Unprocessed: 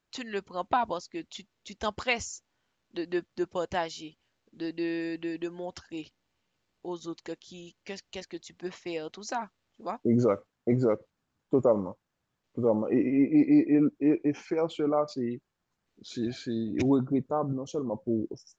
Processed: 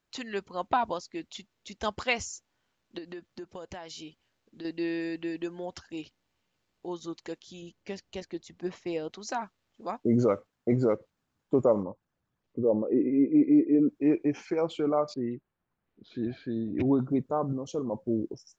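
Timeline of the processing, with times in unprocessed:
0:02.98–0:04.65: downward compressor, threshold −38 dBFS
0:07.62–0:09.11: tilt shelving filter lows +4 dB, about 860 Hz
0:11.83–0:13.89: spectral envelope exaggerated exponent 1.5
0:15.14–0:16.99: high-frequency loss of the air 390 metres

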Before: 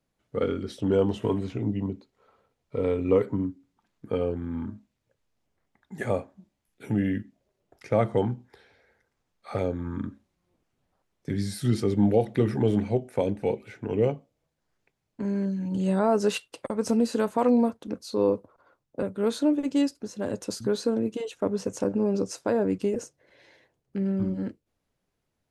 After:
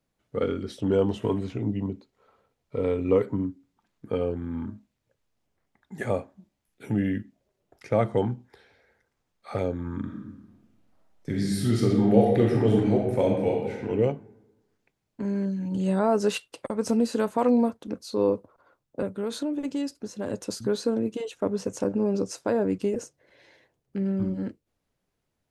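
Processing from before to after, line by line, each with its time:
0:10.03–0:13.88: thrown reverb, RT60 1.1 s, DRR −1 dB
0:19.11–0:20.30: downward compressor, threshold −25 dBFS

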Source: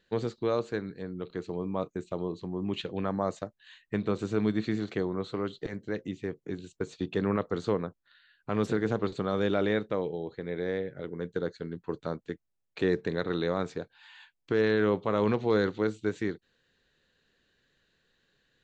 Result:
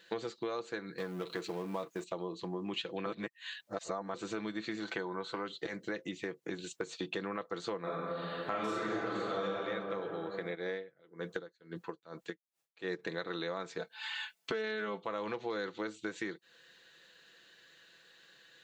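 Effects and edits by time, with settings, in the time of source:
0:00.98–0:02.04: mu-law and A-law mismatch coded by mu
0:03.06–0:04.14: reverse
0:04.83–0:05.43: hollow resonant body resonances 930/1,500 Hz, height 12 dB → 9 dB, ringing for 25 ms
0:07.80–0:09.43: thrown reverb, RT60 2.1 s, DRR −10.5 dB
0:10.54–0:12.98: tremolo with a sine in dB 1.4 Hz → 3.3 Hz, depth 32 dB
0:13.78–0:15.02: comb filter 4.6 ms, depth 99%
whole clip: high-pass filter 780 Hz 6 dB per octave; comb filter 6 ms, depth 48%; downward compressor 6 to 1, threshold −48 dBFS; level +12 dB

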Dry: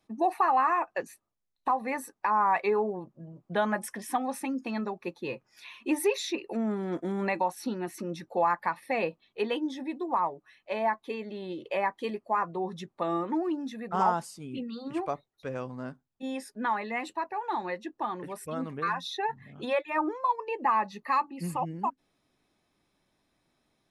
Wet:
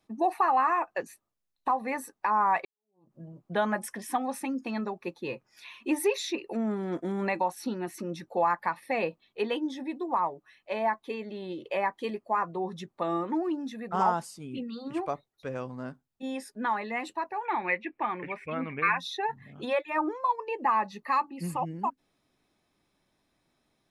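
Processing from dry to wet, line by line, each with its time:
0:02.65–0:03.13: fade in exponential
0:17.45–0:18.98: low-pass with resonance 2,300 Hz, resonance Q 13

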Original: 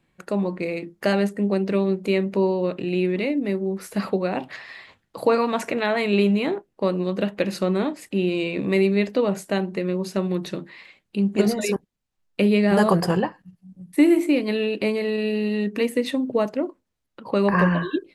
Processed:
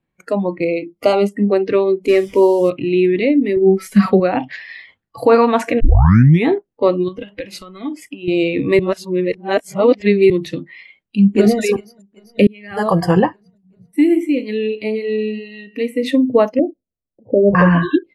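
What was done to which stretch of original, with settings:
0:00.65–0:01.36: Butterworth band-reject 1,700 Hz, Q 2.8
0:02.08–0:02.70: linear delta modulator 64 kbit/s, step −36.5 dBFS
0:03.56–0:04.20: comb filter 5.3 ms, depth 94%
0:05.80: tape start 0.67 s
0:07.08–0:08.28: downward compressor, threshold −27 dBFS
0:08.79–0:10.30: reverse
0:11.20–0:11.62: delay throw 390 ms, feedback 70%, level −17 dB
0:12.47–0:13.26: fade in
0:13.91–0:16.03: tuned comb filter 54 Hz, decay 1.1 s
0:16.59–0:17.55: Butterworth low-pass 740 Hz 72 dB per octave
whole clip: noise reduction from a noise print of the clip's start 18 dB; high-shelf EQ 2,400 Hz −9 dB; boost into a limiter +11.5 dB; level −1 dB

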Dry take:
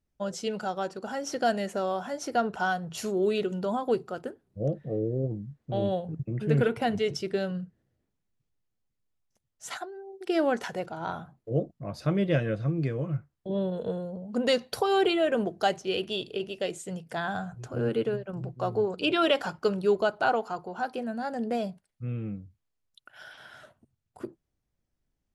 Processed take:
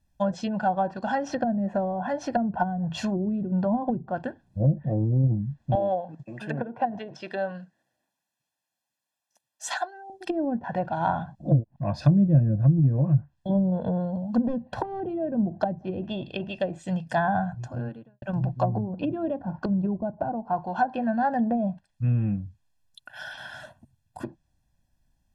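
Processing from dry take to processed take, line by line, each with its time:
0:05.75–0:10.10: high-pass filter 440 Hz
0:11.35–0:11.76: reverse
0:14.37–0:15.00: phase distortion by the signal itself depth 0.17 ms
0:17.19–0:18.22: fade out and dull
whole clip: notch filter 2,300 Hz, Q 12; treble cut that deepens with the level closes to 300 Hz, closed at −24 dBFS; comb filter 1.2 ms, depth 84%; level +6 dB

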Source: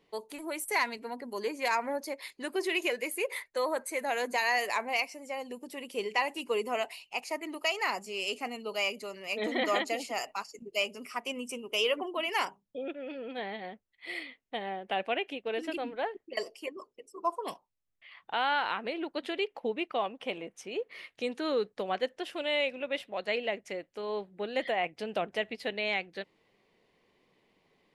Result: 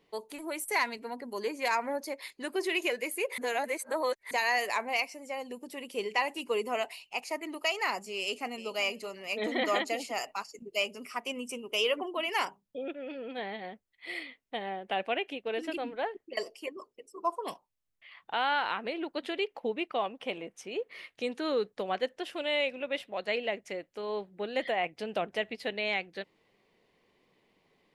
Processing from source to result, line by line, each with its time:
0:03.38–0:04.31: reverse
0:08.19–0:08.72: delay throw 380 ms, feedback 15%, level −13 dB

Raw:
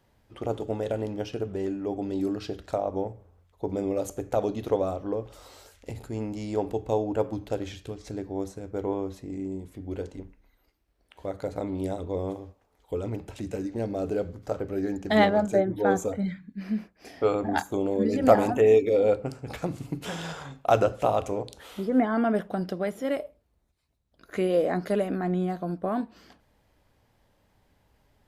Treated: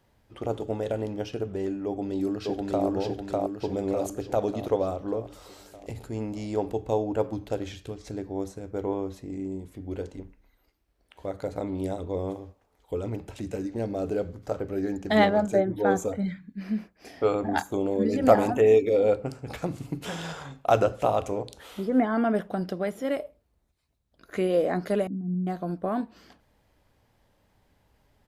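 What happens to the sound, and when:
0:01.85–0:02.86: delay throw 600 ms, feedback 55%, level −0.5 dB
0:25.07–0:25.47: flat-topped band-pass 170 Hz, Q 1.5

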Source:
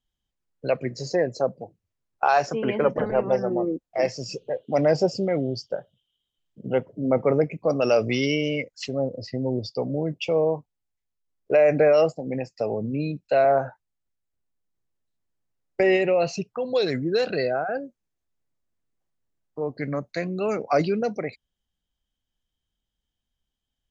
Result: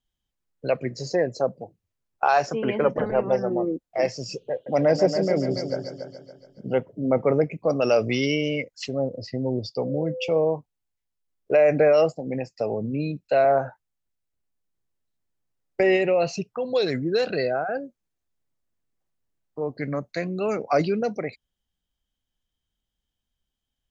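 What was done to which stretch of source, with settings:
0:04.52–0:06.80: echo machine with several playback heads 141 ms, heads first and second, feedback 44%, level −10 dB
0:09.82–0:10.37: steady tone 510 Hz −30 dBFS

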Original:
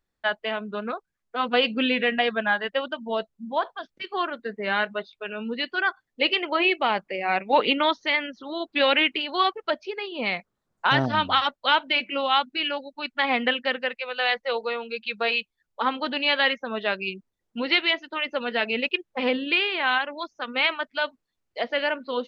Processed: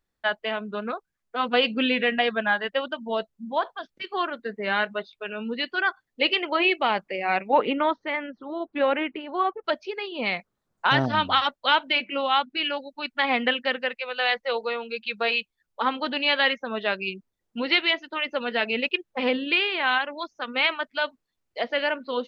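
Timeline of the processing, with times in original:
0:07.47–0:09.63: low-pass filter 1,800 Hz → 1,200 Hz
0:11.98–0:12.57: low-pass filter 4,000 Hz 6 dB per octave

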